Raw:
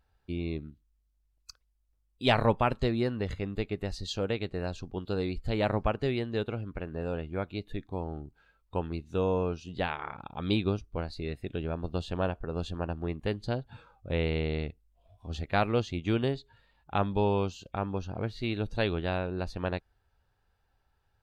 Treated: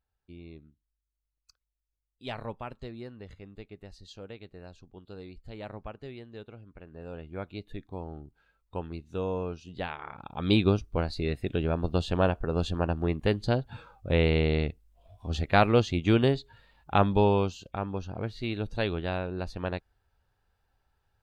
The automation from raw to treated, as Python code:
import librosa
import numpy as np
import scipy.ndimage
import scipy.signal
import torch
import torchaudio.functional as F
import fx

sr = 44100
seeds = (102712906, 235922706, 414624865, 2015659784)

y = fx.gain(x, sr, db=fx.line((6.7, -13.0), (7.44, -3.5), (10.05, -3.5), (10.59, 5.5), (17.1, 5.5), (17.77, -0.5)))